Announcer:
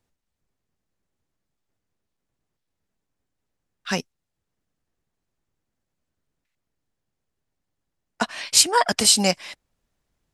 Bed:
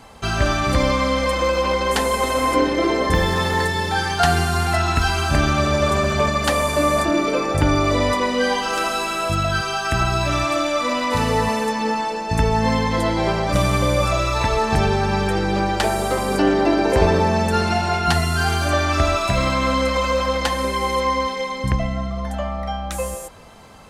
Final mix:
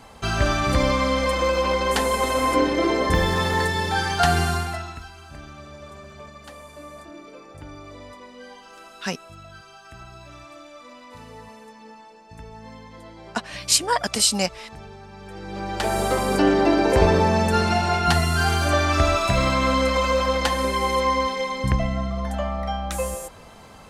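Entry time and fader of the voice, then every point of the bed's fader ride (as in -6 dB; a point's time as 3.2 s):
5.15 s, -3.0 dB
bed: 4.5 s -2 dB
5.1 s -23 dB
15.14 s -23 dB
15.98 s -1 dB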